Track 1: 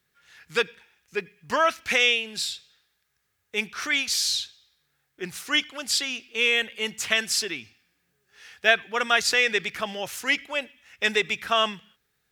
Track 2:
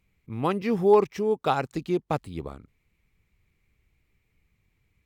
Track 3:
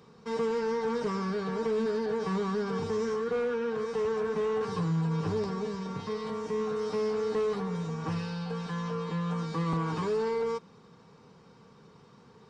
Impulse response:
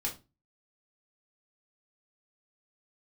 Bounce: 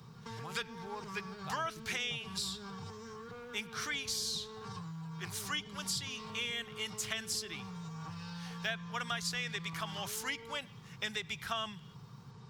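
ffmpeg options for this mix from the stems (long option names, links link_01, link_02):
-filter_complex "[0:a]bandreject=frequency=2600:width=15,volume=-1.5dB[link_01];[1:a]volume=-16dB[link_02];[2:a]alimiter=level_in=6.5dB:limit=-24dB:level=0:latency=1,volume=-6.5dB,acompressor=threshold=-38dB:ratio=6,volume=2.5dB[link_03];[link_01][link_02][link_03]amix=inputs=3:normalize=0,equalizer=frequency=125:width_type=o:width=1:gain=11,equalizer=frequency=250:width_type=o:width=1:gain=-7,equalizer=frequency=500:width_type=o:width=1:gain=-10,equalizer=frequency=2000:width_type=o:width=1:gain=-5,acrossover=split=120|540[link_04][link_05][link_06];[link_04]acompressor=threshold=-52dB:ratio=4[link_07];[link_05]acompressor=threshold=-49dB:ratio=4[link_08];[link_06]acompressor=threshold=-36dB:ratio=4[link_09];[link_07][link_08][link_09]amix=inputs=3:normalize=0"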